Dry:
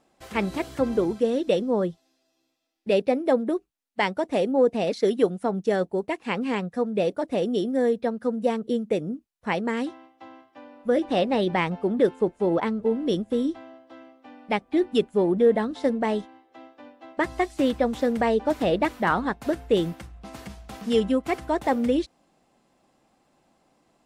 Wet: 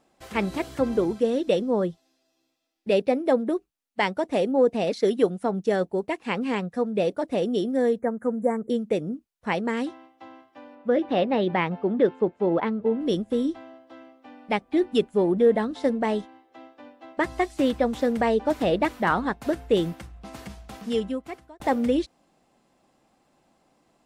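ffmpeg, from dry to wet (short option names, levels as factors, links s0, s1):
-filter_complex "[0:a]asettb=1/sr,asplit=3[s0][s1][s2];[s0]atrim=end=7.994[s3];[s1]atrim=start=7.99:end=8.7,asetpts=PTS-STARTPTS,afade=t=in:d=0.004:c=qsin,afade=t=out:st=0.706:d=0.004:c=qsin,asuperstop=centerf=3800:order=20:qfactor=0.91[s4];[s2]atrim=start=8.696[s5];[s3][s4]acrossfade=d=0.004:c1=hsin:c2=qsin[s6];[s6][s5]acrossfade=d=0.004:c1=qsin:c2=hsin,asettb=1/sr,asplit=3[s7][s8][s9];[s7]atrim=end=10.754[s10];[s8]atrim=start=10.75:end=13.01,asetpts=PTS-STARTPTS,afade=t=in:d=0.004:c=qsin,afade=t=out:st=2.256:d=0.004:c=qsin,highpass=100,lowpass=3400[s11];[s9]atrim=start=13.006[s12];[s10][s11]acrossfade=d=0.004:c1=hsin:c2=qsin[s13];[s13][s12]acrossfade=d=0.004:c1=qsin:c2=hsin,asplit=2[s14][s15];[s14]atrim=end=21.6,asetpts=PTS-STARTPTS,afade=t=out:st=20.59:d=1.01[s16];[s15]atrim=start=21.6,asetpts=PTS-STARTPTS,afade=t=in:d=0.004:c=hsin[s17];[s16][s17]concat=n=2:v=0:a=1"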